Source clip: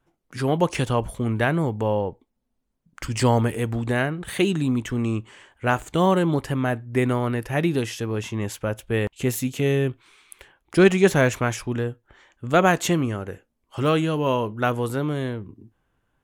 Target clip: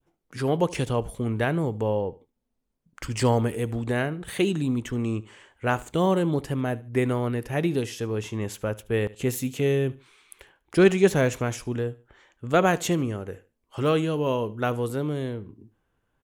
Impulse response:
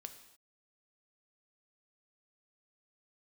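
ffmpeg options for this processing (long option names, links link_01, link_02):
-filter_complex "[0:a]equalizer=frequency=450:width_type=o:width=0.43:gain=3.5,asplit=2[link_01][link_02];[link_02]aecho=0:1:74|148:0.0944|0.0264[link_03];[link_01][link_03]amix=inputs=2:normalize=0,adynamicequalizer=threshold=0.0158:dfrequency=1400:dqfactor=0.74:tfrequency=1400:tqfactor=0.74:attack=5:release=100:ratio=0.375:range=3:mode=cutabove:tftype=bell,volume=-3dB"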